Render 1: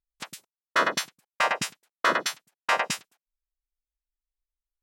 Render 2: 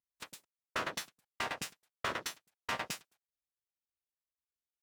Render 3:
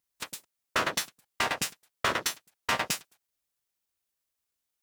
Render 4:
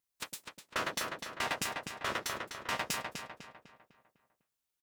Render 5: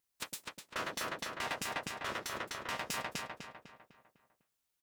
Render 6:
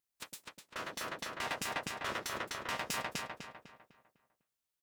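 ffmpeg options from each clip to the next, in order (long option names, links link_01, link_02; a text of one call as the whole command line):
ffmpeg -i in.wav -af "acompressor=threshold=-27dB:ratio=2,aeval=exprs='max(val(0),0)':channel_layout=same,highpass=100,volume=-4dB" out.wav
ffmpeg -i in.wav -af "highshelf=frequency=5300:gain=4.5,volume=8dB" out.wav
ffmpeg -i in.wav -filter_complex "[0:a]alimiter=limit=-16.5dB:level=0:latency=1:release=125,asplit=2[link_01][link_02];[link_02]adelay=251,lowpass=frequency=3600:poles=1,volume=-4dB,asplit=2[link_03][link_04];[link_04]adelay=251,lowpass=frequency=3600:poles=1,volume=0.46,asplit=2[link_05][link_06];[link_06]adelay=251,lowpass=frequency=3600:poles=1,volume=0.46,asplit=2[link_07][link_08];[link_08]adelay=251,lowpass=frequency=3600:poles=1,volume=0.46,asplit=2[link_09][link_10];[link_10]adelay=251,lowpass=frequency=3600:poles=1,volume=0.46,asplit=2[link_11][link_12];[link_12]adelay=251,lowpass=frequency=3600:poles=1,volume=0.46[link_13];[link_01][link_03][link_05][link_07][link_09][link_11][link_13]amix=inputs=7:normalize=0,volume=-3.5dB" out.wav
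ffmpeg -i in.wav -af "alimiter=level_in=3.5dB:limit=-24dB:level=0:latency=1:release=110,volume=-3.5dB,volume=2.5dB" out.wav
ffmpeg -i in.wav -af "dynaudnorm=framelen=210:gausssize=11:maxgain=6dB,volume=-5dB" out.wav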